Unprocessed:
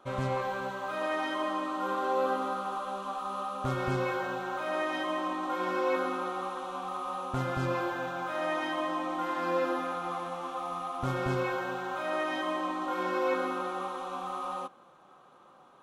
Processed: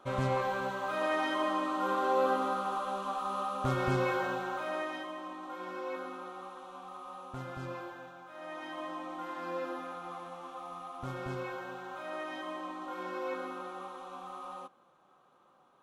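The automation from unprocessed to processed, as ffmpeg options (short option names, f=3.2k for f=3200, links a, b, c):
-af "volume=9dB,afade=t=out:st=4.26:d=0.86:silence=0.298538,afade=t=out:st=7.7:d=0.56:silence=0.473151,afade=t=in:st=8.26:d=0.59:silence=0.375837"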